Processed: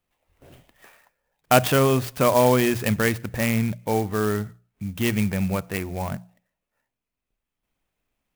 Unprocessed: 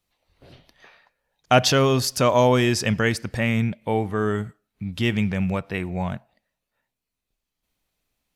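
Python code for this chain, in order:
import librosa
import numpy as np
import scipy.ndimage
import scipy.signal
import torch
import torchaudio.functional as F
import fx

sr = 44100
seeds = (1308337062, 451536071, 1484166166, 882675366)

y = fx.band_shelf(x, sr, hz=6700.0, db=-10.5, octaves=1.7)
y = fx.hum_notches(y, sr, base_hz=60, count=3)
y = fx.clock_jitter(y, sr, seeds[0], jitter_ms=0.044)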